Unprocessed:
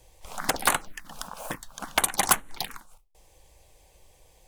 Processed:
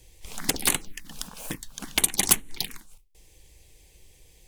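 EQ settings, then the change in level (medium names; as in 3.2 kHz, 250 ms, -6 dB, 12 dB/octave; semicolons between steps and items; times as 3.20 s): high-order bell 880 Hz -12 dB; dynamic bell 1.7 kHz, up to -6 dB, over -47 dBFS, Q 1.7; +3.5 dB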